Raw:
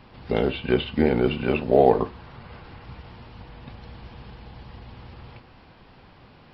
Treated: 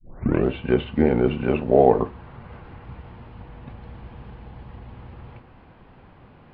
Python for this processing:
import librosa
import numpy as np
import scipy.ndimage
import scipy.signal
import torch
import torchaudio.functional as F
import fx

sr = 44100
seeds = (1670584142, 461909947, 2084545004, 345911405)

y = fx.tape_start_head(x, sr, length_s=0.49)
y = fx.air_absorb(y, sr, metres=460.0)
y = y * librosa.db_to_amplitude(2.5)